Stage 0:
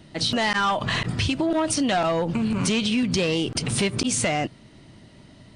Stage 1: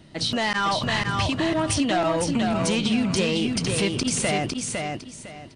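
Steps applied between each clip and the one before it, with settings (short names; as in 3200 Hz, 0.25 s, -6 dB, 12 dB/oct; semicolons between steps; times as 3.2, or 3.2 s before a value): feedback echo 0.505 s, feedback 26%, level -4 dB; gain -1.5 dB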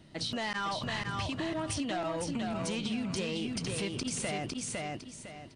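compressor 2:1, threshold -28 dBFS, peak gain reduction 5.5 dB; gain -6.5 dB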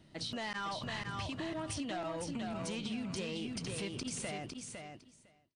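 ending faded out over 1.40 s; gain -5 dB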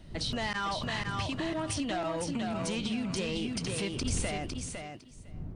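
wind noise 120 Hz -49 dBFS; gain +6 dB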